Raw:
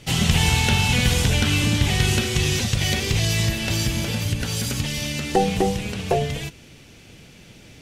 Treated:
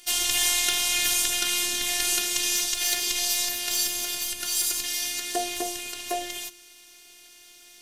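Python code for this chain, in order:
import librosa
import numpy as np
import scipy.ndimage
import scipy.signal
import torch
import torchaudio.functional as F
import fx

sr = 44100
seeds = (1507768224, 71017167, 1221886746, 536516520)

y = fx.riaa(x, sr, side='recording')
y = fx.robotise(y, sr, hz=352.0)
y = fx.hum_notches(y, sr, base_hz=50, count=7)
y = y * librosa.db_to_amplitude(-4.5)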